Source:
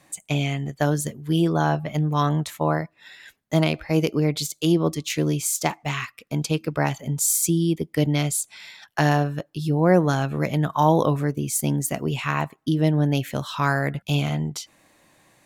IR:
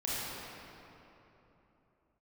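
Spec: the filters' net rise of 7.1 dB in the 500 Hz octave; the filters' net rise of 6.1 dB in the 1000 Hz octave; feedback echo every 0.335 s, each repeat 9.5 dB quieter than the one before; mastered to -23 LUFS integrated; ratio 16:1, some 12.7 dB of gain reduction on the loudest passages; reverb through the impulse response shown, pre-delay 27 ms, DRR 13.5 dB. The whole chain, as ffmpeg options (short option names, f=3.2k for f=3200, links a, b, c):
-filter_complex "[0:a]equalizer=f=500:t=o:g=7.5,equalizer=f=1k:t=o:g=5,acompressor=threshold=-19dB:ratio=16,aecho=1:1:335|670|1005|1340:0.335|0.111|0.0365|0.012,asplit=2[a][b];[1:a]atrim=start_sample=2205,adelay=27[c];[b][c]afir=irnorm=-1:irlink=0,volume=-20dB[d];[a][d]amix=inputs=2:normalize=0,volume=2dB"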